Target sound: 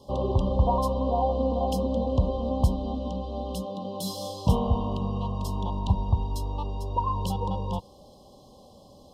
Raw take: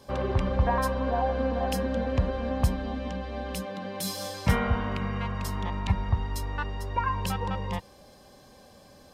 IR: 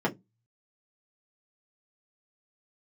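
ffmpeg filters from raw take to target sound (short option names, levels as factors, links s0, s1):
-af "asuperstop=centerf=1800:order=12:qfactor=0.95,highshelf=f=4900:g=-7.5,volume=1.26"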